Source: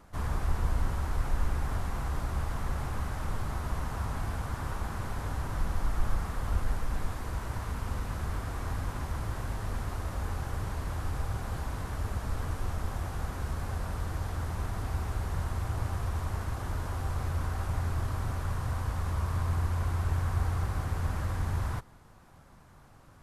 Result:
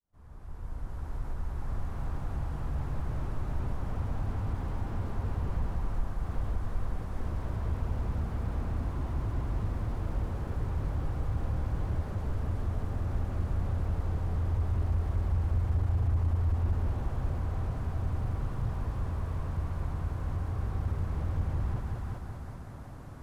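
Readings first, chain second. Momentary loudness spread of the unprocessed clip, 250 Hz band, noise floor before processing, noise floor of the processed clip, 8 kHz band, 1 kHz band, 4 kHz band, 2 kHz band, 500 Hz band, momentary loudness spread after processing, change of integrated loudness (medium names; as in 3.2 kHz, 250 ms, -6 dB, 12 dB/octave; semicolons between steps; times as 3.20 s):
5 LU, +1.0 dB, -55 dBFS, -42 dBFS, under -10 dB, -5.0 dB, -9.0 dB, -8.0 dB, -1.0 dB, 8 LU, +0.5 dB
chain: fade-in on the opening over 6.40 s; tilt shelf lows +4.5 dB; compression 5:1, threshold -34 dBFS, peak gain reduction 16.5 dB; multi-head delay 189 ms, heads first and second, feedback 56%, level -6.5 dB; slew-rate limiter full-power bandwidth 4.1 Hz; trim +4 dB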